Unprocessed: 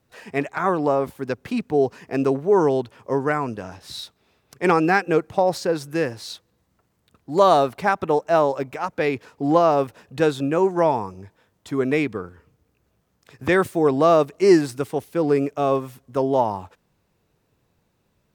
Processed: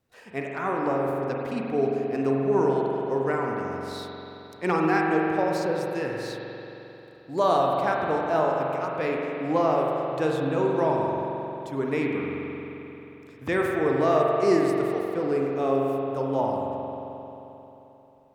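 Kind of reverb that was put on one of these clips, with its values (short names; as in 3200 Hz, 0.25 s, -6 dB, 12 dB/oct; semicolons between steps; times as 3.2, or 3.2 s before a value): spring tank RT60 3.4 s, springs 44 ms, chirp 65 ms, DRR -1.5 dB; gain -8 dB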